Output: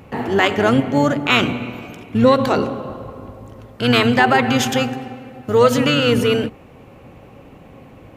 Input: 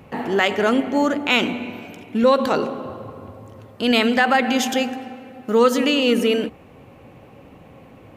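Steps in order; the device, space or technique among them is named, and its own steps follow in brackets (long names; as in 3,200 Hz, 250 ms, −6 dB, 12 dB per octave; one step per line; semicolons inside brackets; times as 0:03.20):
octave pedal (pitch-shifted copies added −12 semitones −6 dB)
level +2 dB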